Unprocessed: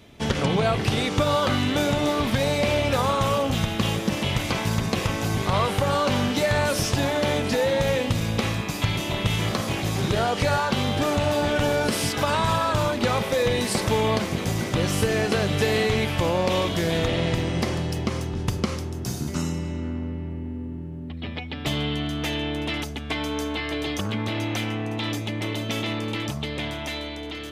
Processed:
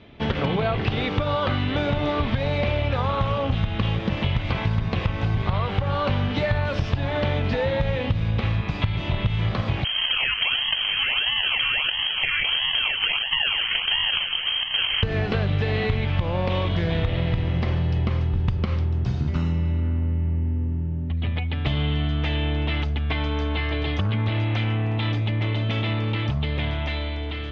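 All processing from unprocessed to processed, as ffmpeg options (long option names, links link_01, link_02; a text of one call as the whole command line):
ffmpeg -i in.wav -filter_complex "[0:a]asettb=1/sr,asplit=3[link_01][link_02][link_03];[link_01]atrim=end=9.844[link_04];[link_02]atrim=start=9.84:end=15.03,asetpts=PTS-STARTPTS,afade=type=in:duration=0.004:curve=qsin,afade=type=out:start_time=5.186:duration=0.004:curve=qsin,acrusher=samples=32:mix=1:aa=0.000001:lfo=1:lforange=32:lforate=1.5,lowpass=frequency=2800:width_type=q:width=0.5098,lowpass=frequency=2800:width_type=q:width=0.6013,lowpass=frequency=2800:width_type=q:width=0.9,lowpass=frequency=2800:width_type=q:width=2.563,afreqshift=-3300[link_05];[link_03]atrim=start=15.026[link_06];[link_04][link_05]acrossfade=duration=0.004:curve1=hsin:curve2=qsin[link_07];[link_07][link_06]acrossfade=duration=0.004:curve1=qsin:curve2=hsin,lowpass=frequency=3600:width=0.5412,lowpass=frequency=3600:width=1.3066,asubboost=boost=4.5:cutoff=120,acompressor=threshold=-21dB:ratio=6,volume=2dB" out.wav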